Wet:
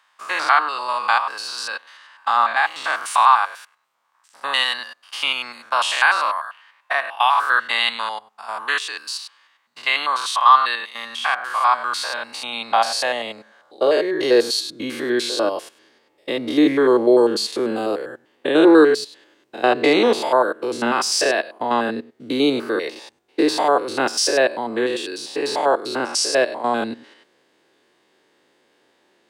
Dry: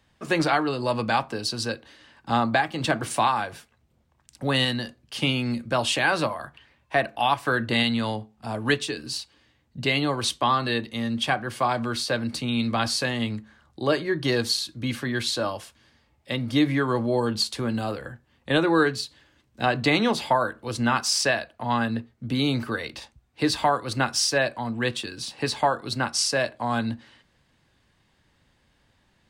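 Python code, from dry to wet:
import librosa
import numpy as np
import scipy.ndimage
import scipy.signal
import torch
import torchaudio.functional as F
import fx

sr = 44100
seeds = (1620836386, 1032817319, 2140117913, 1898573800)

y = fx.spec_steps(x, sr, hold_ms=100)
y = fx.filter_sweep_highpass(y, sr, from_hz=1100.0, to_hz=380.0, start_s=11.72, end_s=14.68, q=2.9)
y = y * 10.0 ** (5.5 / 20.0)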